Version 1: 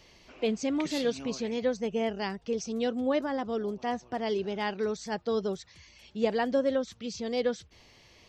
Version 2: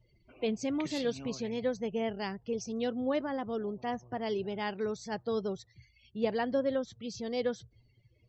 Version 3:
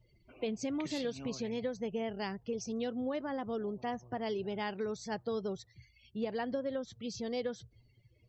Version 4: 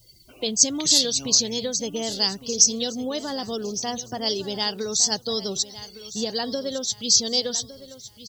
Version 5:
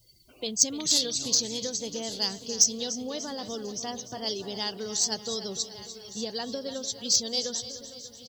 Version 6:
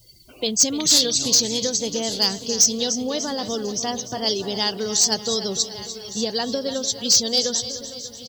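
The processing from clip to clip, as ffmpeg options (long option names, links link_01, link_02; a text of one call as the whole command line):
ffmpeg -i in.wav -af "afftdn=noise_reduction=29:noise_floor=-51,equalizer=frequency=120:width=4:gain=14.5,volume=-3.5dB" out.wav
ffmpeg -i in.wav -af "acompressor=threshold=-32dB:ratio=6" out.wav
ffmpeg -i in.wav -af "aexciter=amount=14:drive=5.5:freq=3600,aecho=1:1:1159|2318|3477:0.178|0.0551|0.0171,volume=6.5dB" out.wav
ffmpeg -i in.wav -af "aecho=1:1:296|592|888|1184|1480|1776:0.224|0.128|0.0727|0.0415|0.0236|0.0135,aeval=exprs='0.891*(cos(1*acos(clip(val(0)/0.891,-1,1)))-cos(1*PI/2))+0.141*(cos(3*acos(clip(val(0)/0.891,-1,1)))-cos(3*PI/2))':channel_layout=same,volume=-1dB" out.wav
ffmpeg -i in.wav -af "volume=18.5dB,asoftclip=hard,volume=-18.5dB,volume=9dB" out.wav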